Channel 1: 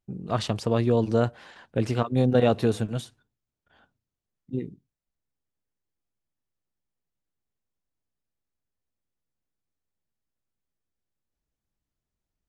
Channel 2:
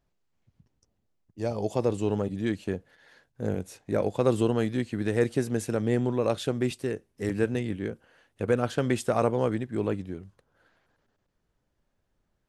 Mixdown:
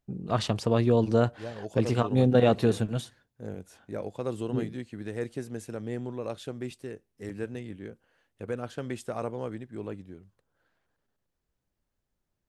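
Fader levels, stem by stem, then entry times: −0.5, −9.0 decibels; 0.00, 0.00 seconds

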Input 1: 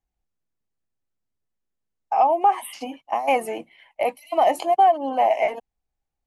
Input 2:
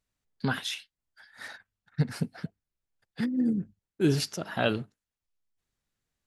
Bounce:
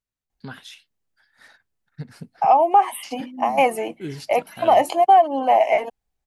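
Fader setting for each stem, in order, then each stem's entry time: +3.0, −8.0 decibels; 0.30, 0.00 seconds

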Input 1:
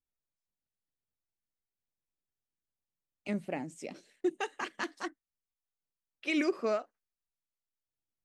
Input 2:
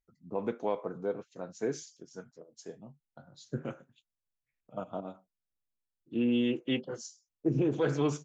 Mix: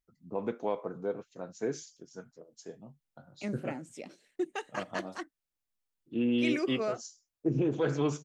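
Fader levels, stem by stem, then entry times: −2.0, −0.5 decibels; 0.15, 0.00 seconds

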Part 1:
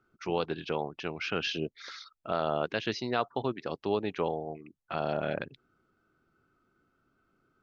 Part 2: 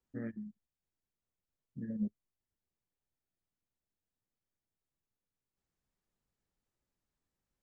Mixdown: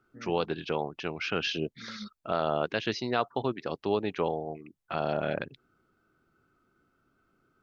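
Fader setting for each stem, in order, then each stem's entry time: +1.5, −8.0 decibels; 0.00, 0.00 seconds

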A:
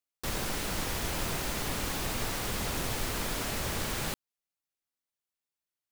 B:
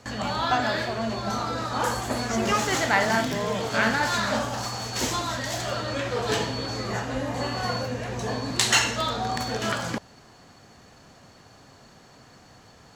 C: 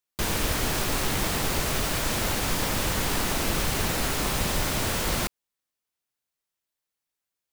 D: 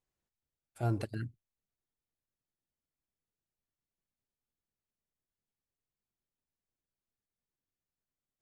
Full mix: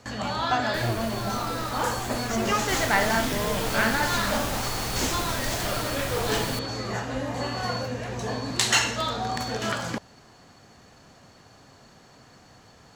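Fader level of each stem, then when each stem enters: +1.0, −1.0, −12.0, +1.5 decibels; 2.45, 0.00, 0.55, 0.00 seconds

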